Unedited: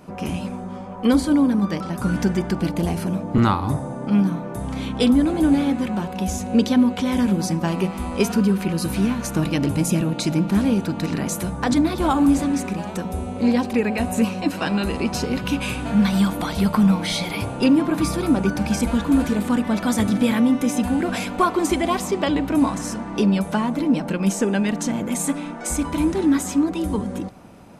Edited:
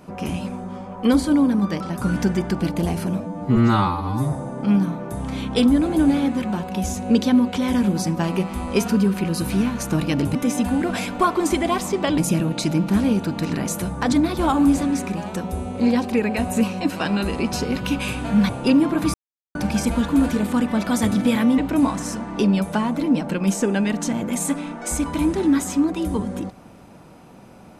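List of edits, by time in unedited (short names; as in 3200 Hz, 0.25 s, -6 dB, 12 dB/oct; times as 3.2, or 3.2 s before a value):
3.2–3.76 stretch 2×
16.1–17.45 cut
18.1–18.51 mute
20.54–22.37 move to 9.79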